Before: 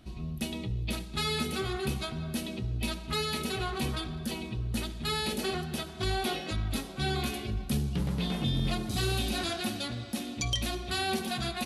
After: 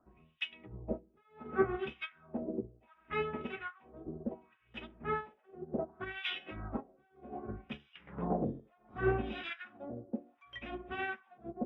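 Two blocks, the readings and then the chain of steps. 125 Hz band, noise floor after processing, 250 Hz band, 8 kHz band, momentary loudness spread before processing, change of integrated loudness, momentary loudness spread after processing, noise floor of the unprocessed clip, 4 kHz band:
-13.0 dB, -71 dBFS, -7.0 dB, under -40 dB, 5 LU, -7.5 dB, 16 LU, -42 dBFS, -15.0 dB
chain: three-band isolator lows -12 dB, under 250 Hz, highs -20 dB, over 2800 Hz; de-hum 46.04 Hz, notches 8; harmonic tremolo 1.2 Hz, depth 100%, crossover 1400 Hz; Butterworth band-stop 4300 Hz, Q 4.3; LFO low-pass sine 0.67 Hz 460–3200 Hz; dynamic EQ 830 Hz, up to -4 dB, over -47 dBFS, Q 0.77; upward expander 2.5:1, over -48 dBFS; gain +11 dB

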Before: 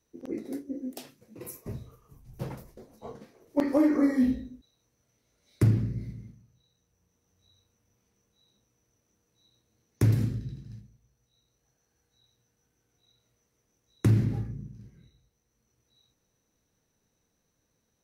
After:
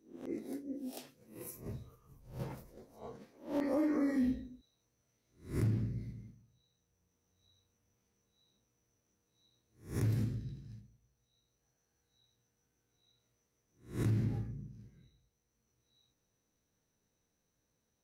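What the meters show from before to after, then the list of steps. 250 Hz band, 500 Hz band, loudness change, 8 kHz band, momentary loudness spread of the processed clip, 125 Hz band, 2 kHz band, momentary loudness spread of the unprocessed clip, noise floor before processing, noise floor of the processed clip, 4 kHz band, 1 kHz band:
-8.0 dB, -7.0 dB, -8.5 dB, -5.5 dB, 20 LU, -8.5 dB, -7.0 dB, 22 LU, -77 dBFS, -82 dBFS, n/a, -6.5 dB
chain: spectral swells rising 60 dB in 0.36 s; limiter -18 dBFS, peak gain reduction 7.5 dB; gain -7 dB

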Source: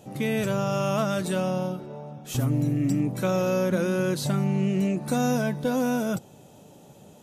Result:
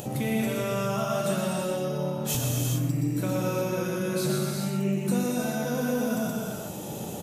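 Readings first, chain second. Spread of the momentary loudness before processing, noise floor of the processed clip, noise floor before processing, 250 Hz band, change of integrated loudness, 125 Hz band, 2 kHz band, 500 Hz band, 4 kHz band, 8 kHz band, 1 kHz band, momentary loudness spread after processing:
6 LU, -36 dBFS, -51 dBFS, -2.5 dB, -2.0 dB, -1.5 dB, -2.0 dB, -2.0 dB, +1.0 dB, +4.5 dB, -2.0 dB, 3 LU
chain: echo 0.122 s -3.5 dB; compressor 5:1, threshold -39 dBFS, peak gain reduction 19.5 dB; high shelf 10000 Hz +10 dB; non-linear reverb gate 0.45 s flat, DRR -2 dB; upward compressor, threshold -44 dBFS; gain +8.5 dB

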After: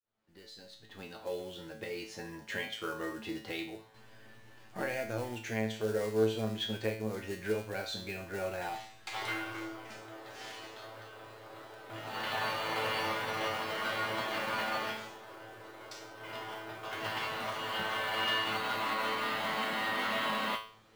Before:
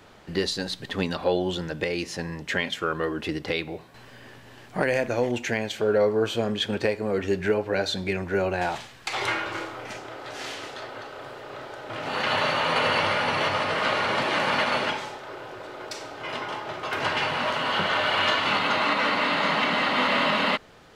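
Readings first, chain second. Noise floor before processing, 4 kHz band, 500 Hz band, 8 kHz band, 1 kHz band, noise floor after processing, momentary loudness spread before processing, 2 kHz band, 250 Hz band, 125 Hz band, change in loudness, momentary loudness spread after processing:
-48 dBFS, -10.0 dB, -10.5 dB, -7.5 dB, -10.0 dB, -55 dBFS, 15 LU, -10.0 dB, -10.0 dB, -9.0 dB, -10.0 dB, 17 LU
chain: opening faded in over 2.41 s; short-mantissa float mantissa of 2-bit; resonator 110 Hz, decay 0.43 s, harmonics all, mix 90%

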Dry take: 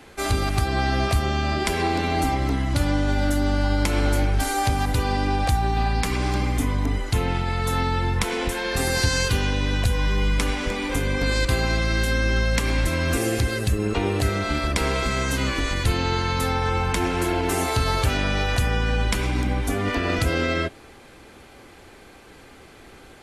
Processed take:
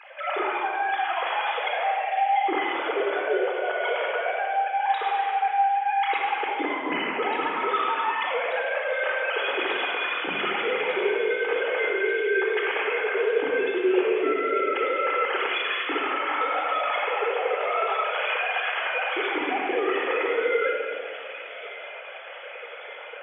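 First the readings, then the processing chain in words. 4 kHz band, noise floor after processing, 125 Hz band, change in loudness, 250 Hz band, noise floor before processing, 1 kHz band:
-4.0 dB, -39 dBFS, under -35 dB, -1.5 dB, -9.0 dB, -47 dBFS, +3.0 dB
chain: sine-wave speech; reverse; compressor 6:1, threshold -29 dBFS, peak gain reduction 16.5 dB; reverse; Chebyshev high-pass 330 Hz, order 2; on a send: thin delay 1.192 s, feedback 69%, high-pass 2900 Hz, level -6.5 dB; on the sum: shoebox room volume 3000 m³, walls mixed, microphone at 4 m

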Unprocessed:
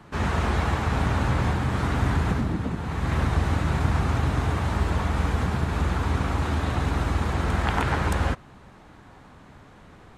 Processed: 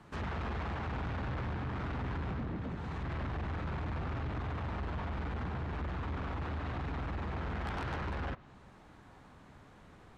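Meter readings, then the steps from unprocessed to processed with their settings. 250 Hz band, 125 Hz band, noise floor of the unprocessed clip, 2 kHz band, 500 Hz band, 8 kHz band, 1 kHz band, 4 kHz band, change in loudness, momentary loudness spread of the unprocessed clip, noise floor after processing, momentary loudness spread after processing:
-12.5 dB, -13.5 dB, -49 dBFS, -12.5 dB, -12.0 dB, under -20 dB, -12.5 dB, -14.5 dB, -13.0 dB, 3 LU, -57 dBFS, 19 LU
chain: treble ducked by the level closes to 3000 Hz, closed at -21.5 dBFS; soft clip -26 dBFS, distortion -9 dB; gain -7.5 dB

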